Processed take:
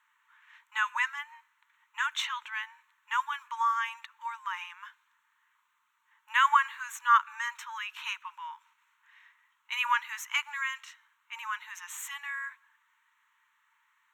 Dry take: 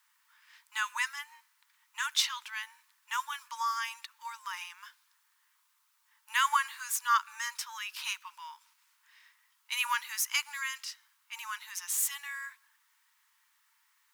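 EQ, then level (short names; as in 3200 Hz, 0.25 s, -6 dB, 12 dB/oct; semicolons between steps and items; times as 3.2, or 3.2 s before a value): running mean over 9 samples; +5.5 dB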